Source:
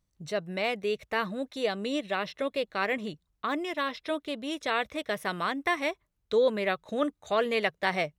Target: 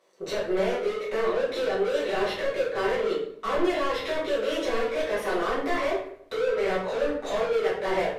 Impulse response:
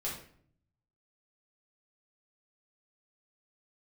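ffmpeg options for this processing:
-filter_complex "[0:a]highpass=f=450:t=q:w=4.9,acompressor=threshold=-27dB:ratio=6,asplit=2[a][b];[b]highpass=f=720:p=1,volume=35dB,asoftclip=type=tanh:threshold=-16dB[c];[a][c]amix=inputs=2:normalize=0,lowpass=f=2k:p=1,volume=-6dB[d];[1:a]atrim=start_sample=2205,asetrate=38367,aresample=44100[e];[d][e]afir=irnorm=-1:irlink=0,volume=-7dB" -ar 32000 -c:a libvorbis -b:a 128k

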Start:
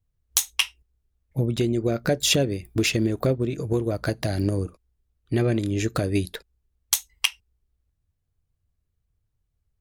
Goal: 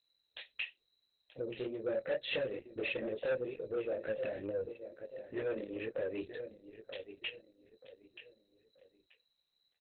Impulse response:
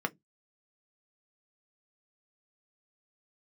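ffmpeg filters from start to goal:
-filter_complex "[0:a]aeval=exprs='val(0)+0.00251*sin(2*PI*4100*n/s)':c=same,asplit=3[a][b][c];[a]afade=t=out:st=5.47:d=0.02[d];[b]aemphasis=mode=reproduction:type=50fm,afade=t=in:st=5.47:d=0.02,afade=t=out:st=6.15:d=0.02[e];[c]afade=t=in:st=6.15:d=0.02[f];[d][e][f]amix=inputs=3:normalize=0,flanger=delay=18:depth=6.5:speed=2.2,asplit=3[g][h][i];[g]bandpass=f=530:t=q:w=8,volume=0dB[j];[h]bandpass=f=1.84k:t=q:w=8,volume=-6dB[k];[i]bandpass=f=2.48k:t=q:w=8,volume=-9dB[l];[j][k][l]amix=inputs=3:normalize=0,asplit=2[m][n];[n]adelay=23,volume=-10.5dB[o];[m][o]amix=inputs=2:normalize=0,asplit=2[p][q];[q]adelay=931,lowpass=f=2.3k:p=1,volume=-13dB,asplit=2[r][s];[s]adelay=931,lowpass=f=2.3k:p=1,volume=0.35,asplit=2[t][u];[u]adelay=931,lowpass=f=2.3k:p=1,volume=0.35[v];[p][r][t][v]amix=inputs=4:normalize=0,asoftclip=type=tanh:threshold=-34.5dB,asettb=1/sr,asplit=3[w][x][y];[w]atrim=end=2.004[z];[x]atrim=start=2:end=2.64,asetpts=PTS-STARTPTS,afade=t=in:d=0.004:c=qsin,afade=t=out:st=0.636:d=0.004:c=qsin,equalizer=f=1.8k:t=o:w=0.4:g=4[aa];[y]atrim=start=2.636[ab];[z][aa]acrossfade=d=0.004:c1=hsin:c2=qsin[ac];[ac][ab]acrossfade=d=0.004:c1=qsin:c2=hsin,volume=5.5dB" -ar 48000 -c:a libopus -b:a 8k

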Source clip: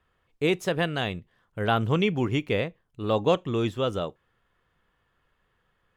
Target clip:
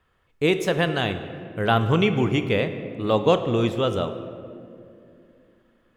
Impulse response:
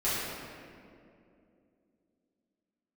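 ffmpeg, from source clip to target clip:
-filter_complex "[0:a]asplit=2[a][b];[1:a]atrim=start_sample=2205,adelay=25[c];[b][c]afir=irnorm=-1:irlink=0,volume=-19.5dB[d];[a][d]amix=inputs=2:normalize=0,volume=3.5dB"

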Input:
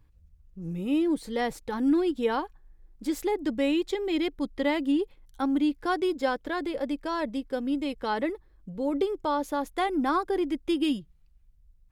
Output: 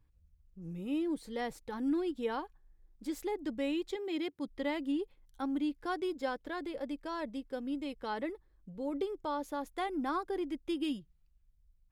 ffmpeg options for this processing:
-filter_complex "[0:a]asettb=1/sr,asplit=3[a][b][c];[a]atrim=end=3.964[d];[b]atrim=start=3.96:end=4.48,asetpts=PTS-STARTPTS,afade=t=in:d=0.004:c=qsin,afade=t=out:st=0.516:d=0.004:c=qsin,highpass=f=91:w=0.5412,highpass=f=91:w=1.3066[e];[c]atrim=start=4.476[f];[d][e]acrossfade=d=0.004:c1=hsin:c2=qsin[g];[g][f]acrossfade=d=0.004:c1=qsin:c2=hsin,volume=-8.5dB"

